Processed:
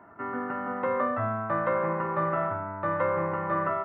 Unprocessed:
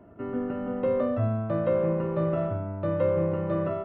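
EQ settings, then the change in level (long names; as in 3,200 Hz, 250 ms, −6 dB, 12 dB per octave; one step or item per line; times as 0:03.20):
high-pass filter 140 Hz 6 dB per octave
flat-topped bell 1,300 Hz +15 dB
−4.0 dB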